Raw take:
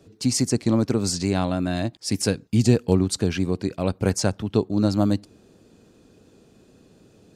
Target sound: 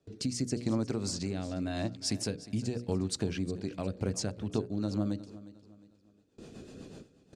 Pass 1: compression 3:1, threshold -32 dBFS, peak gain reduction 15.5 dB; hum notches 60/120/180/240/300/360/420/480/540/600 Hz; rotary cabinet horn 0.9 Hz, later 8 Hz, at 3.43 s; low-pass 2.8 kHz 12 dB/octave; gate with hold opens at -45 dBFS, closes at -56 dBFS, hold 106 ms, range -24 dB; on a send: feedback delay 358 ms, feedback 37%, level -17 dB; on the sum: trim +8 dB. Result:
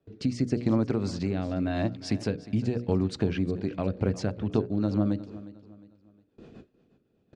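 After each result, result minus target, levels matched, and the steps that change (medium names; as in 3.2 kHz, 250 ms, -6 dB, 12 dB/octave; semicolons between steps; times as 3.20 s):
8 kHz band -15.0 dB; compression: peak gain reduction -6 dB
change: low-pass 9.3 kHz 12 dB/octave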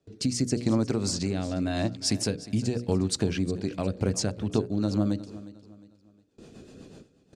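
compression: peak gain reduction -6 dB
change: compression 3:1, threshold -41 dBFS, peak gain reduction 21.5 dB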